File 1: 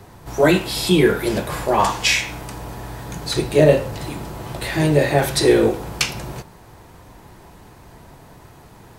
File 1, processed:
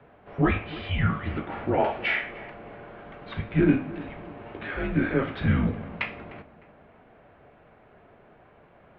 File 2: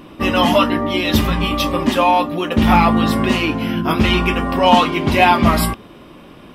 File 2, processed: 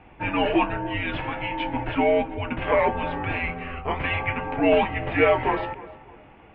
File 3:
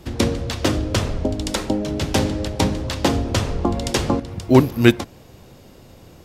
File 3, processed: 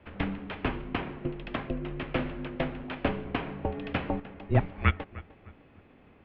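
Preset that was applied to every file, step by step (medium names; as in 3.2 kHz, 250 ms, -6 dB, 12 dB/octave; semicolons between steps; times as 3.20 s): tape echo 302 ms, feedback 42%, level -16.5 dB, low-pass 2.1 kHz; mistuned SSB -270 Hz 370–3000 Hz; trim -6 dB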